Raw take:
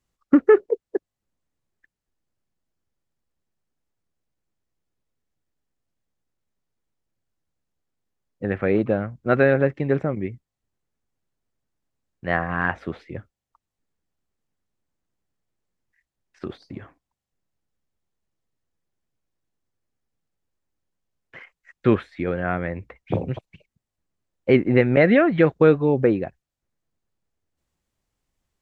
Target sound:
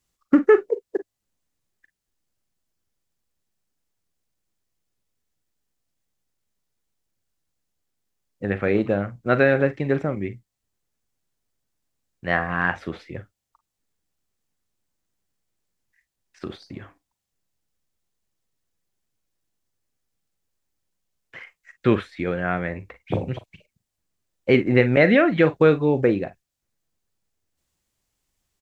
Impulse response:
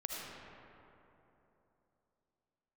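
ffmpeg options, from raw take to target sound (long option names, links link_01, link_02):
-filter_complex "[0:a]highshelf=frequency=2700:gain=9,asplit=2[link_01][link_02];[link_02]aecho=0:1:40|50:0.178|0.133[link_03];[link_01][link_03]amix=inputs=2:normalize=0,volume=-1dB"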